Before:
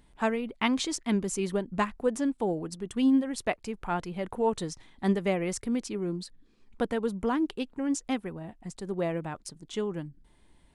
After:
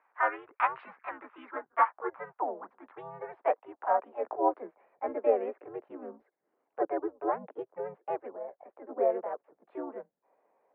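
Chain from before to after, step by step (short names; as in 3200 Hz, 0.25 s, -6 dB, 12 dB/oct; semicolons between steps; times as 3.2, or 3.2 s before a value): mistuned SSB -130 Hz 490–2000 Hz; band-pass sweep 1100 Hz -> 510 Hz, 1.45–4.89; harmoniser +4 st 0 dB; gain +5.5 dB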